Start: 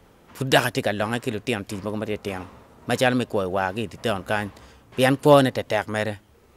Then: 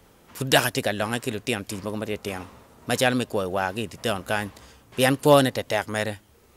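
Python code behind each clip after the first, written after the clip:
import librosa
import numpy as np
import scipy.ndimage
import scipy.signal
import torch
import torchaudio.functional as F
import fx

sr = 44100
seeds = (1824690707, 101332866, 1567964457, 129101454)

y = fx.high_shelf(x, sr, hz=4000.0, db=8.0)
y = F.gain(torch.from_numpy(y), -2.0).numpy()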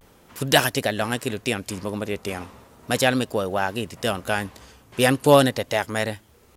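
y = fx.vibrato(x, sr, rate_hz=0.36, depth_cents=42.0)
y = F.gain(torch.from_numpy(y), 1.5).numpy()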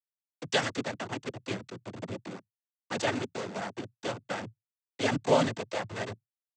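y = fx.delta_hold(x, sr, step_db=-20.0)
y = fx.noise_vocoder(y, sr, seeds[0], bands=16)
y = F.gain(torch.from_numpy(y), -9.0).numpy()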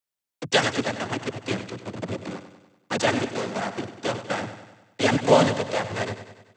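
y = fx.echo_feedback(x, sr, ms=97, feedback_pct=55, wet_db=-11.5)
y = F.gain(torch.from_numpy(y), 7.0).numpy()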